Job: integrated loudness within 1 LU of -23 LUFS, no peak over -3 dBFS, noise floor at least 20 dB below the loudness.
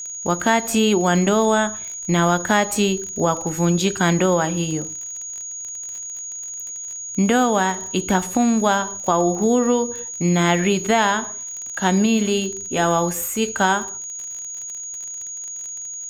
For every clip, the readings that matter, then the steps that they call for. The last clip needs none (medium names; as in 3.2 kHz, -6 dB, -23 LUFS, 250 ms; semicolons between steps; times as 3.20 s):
tick rate 33 per s; steady tone 6.7 kHz; tone level -29 dBFS; loudness -20.5 LUFS; peak level -3.5 dBFS; loudness target -23.0 LUFS
-> de-click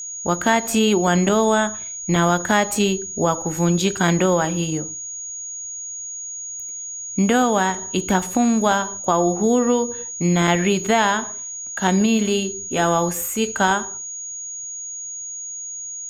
tick rate 0.19 per s; steady tone 6.7 kHz; tone level -29 dBFS
-> band-stop 6.7 kHz, Q 30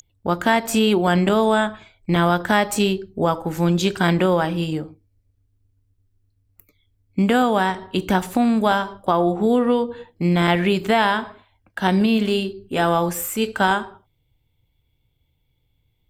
steady tone not found; loudness -20.0 LUFS; peak level -3.0 dBFS; loudness target -23.0 LUFS
-> trim -3 dB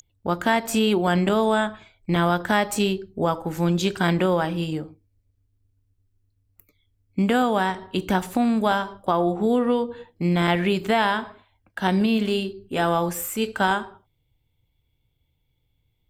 loudness -23.0 LUFS; peak level -6.0 dBFS; noise floor -71 dBFS